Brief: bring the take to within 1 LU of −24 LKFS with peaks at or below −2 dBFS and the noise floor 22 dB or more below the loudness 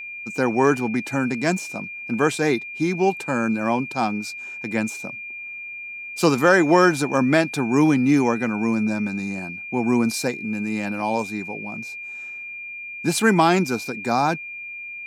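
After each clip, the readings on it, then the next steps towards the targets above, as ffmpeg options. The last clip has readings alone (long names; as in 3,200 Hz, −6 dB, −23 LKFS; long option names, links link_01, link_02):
interfering tone 2,400 Hz; level of the tone −32 dBFS; integrated loudness −22.5 LKFS; sample peak −4.0 dBFS; target loudness −24.0 LKFS
→ -af "bandreject=frequency=2400:width=30"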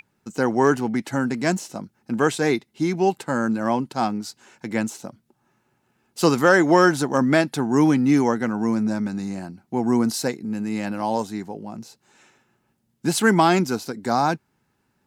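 interfering tone none found; integrated loudness −21.5 LKFS; sample peak −4.0 dBFS; target loudness −24.0 LKFS
→ -af "volume=-2.5dB"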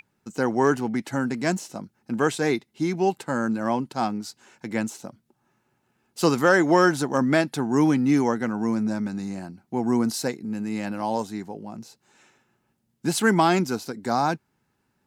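integrated loudness −24.0 LKFS; sample peak −6.5 dBFS; background noise floor −72 dBFS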